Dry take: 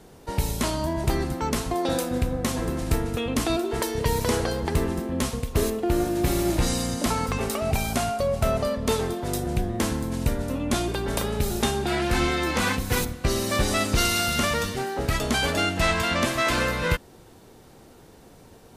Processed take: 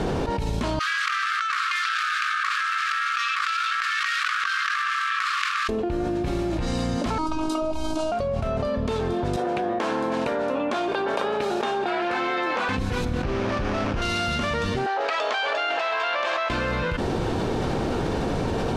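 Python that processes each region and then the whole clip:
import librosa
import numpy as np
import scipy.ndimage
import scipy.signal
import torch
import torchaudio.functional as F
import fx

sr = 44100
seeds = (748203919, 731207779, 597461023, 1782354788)

y = fx.chain(x, sr, fx.median_filter(points=15),
    fx.brickwall_highpass(low_hz=1100.0),
    fx.over_compress(threshold_db=-44.0, ratio=-0.5), at=(0.79, 5.69))
y = fx.chain(y, sr, fx.peak_eq(hz=12000.0, db=-5.0, octaves=0.29),
    fx.fixed_phaser(hz=520.0, stages=6),
    fx.robotise(hz=315.0), at=(7.18, 8.12))
y = fx.chain(y, sr, fx.highpass(hz=520.0, slope=12),
    fx.high_shelf(hz=3000.0, db=-10.5), at=(9.36, 12.69))
y = fx.chain(y, sr, fx.delta_mod(bps=32000, step_db=-21.5),
    fx.running_max(window=9), at=(13.23, 14.02))
y = fx.chain(y, sr, fx.highpass(hz=560.0, slope=24),
    fx.air_absorb(metres=96.0),
    fx.over_compress(threshold_db=-33.0, ratio=-1.0), at=(14.86, 16.5))
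y = scipy.signal.sosfilt(scipy.signal.bessel(2, 3200.0, 'lowpass', norm='mag', fs=sr, output='sos'), y)
y = fx.notch(y, sr, hz=2000.0, q=16.0)
y = fx.env_flatten(y, sr, amount_pct=100)
y = F.gain(torch.from_numpy(y), -7.5).numpy()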